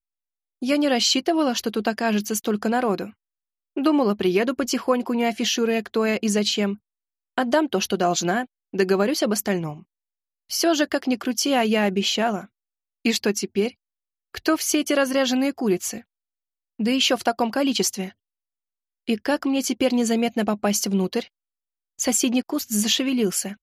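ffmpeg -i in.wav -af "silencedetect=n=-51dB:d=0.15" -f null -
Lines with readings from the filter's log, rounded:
silence_start: 0.00
silence_end: 0.62 | silence_duration: 0.62
silence_start: 3.13
silence_end: 3.76 | silence_duration: 0.64
silence_start: 6.78
silence_end: 7.38 | silence_duration: 0.60
silence_start: 8.46
silence_end: 8.73 | silence_duration: 0.27
silence_start: 9.83
silence_end: 10.49 | silence_duration: 0.66
silence_start: 12.47
silence_end: 13.05 | silence_duration: 0.59
silence_start: 13.73
silence_end: 14.34 | silence_duration: 0.61
silence_start: 16.03
silence_end: 16.79 | silence_duration: 0.77
silence_start: 18.12
silence_end: 19.08 | silence_duration: 0.95
silence_start: 21.28
silence_end: 21.99 | silence_duration: 0.71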